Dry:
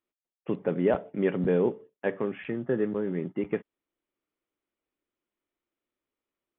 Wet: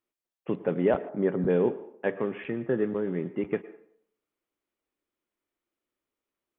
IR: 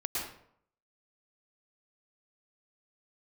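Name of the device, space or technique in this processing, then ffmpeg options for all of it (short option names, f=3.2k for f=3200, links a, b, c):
filtered reverb send: -filter_complex "[0:a]asplit=2[a][b];[b]highpass=340,lowpass=3k[c];[1:a]atrim=start_sample=2205[d];[c][d]afir=irnorm=-1:irlink=0,volume=-17.5dB[e];[a][e]amix=inputs=2:normalize=0,asettb=1/sr,asplit=3[f][g][h];[f]atrim=end=1.094[i];[g]atrim=start=1.09:end=1.5,asetpts=PTS-STARTPTS,afade=t=in:d=0.004:c=qsin,afade=t=out:st=0.406:d=0.004:c=qsin,equalizer=f=2.7k:t=o:w=0.81:g=-15[j];[h]atrim=start=1.496[k];[i][j]acrossfade=d=0.004:c1=hsin:c2=qsin[l];[l][k]acrossfade=d=0.004:c1=qsin:c2=hsin"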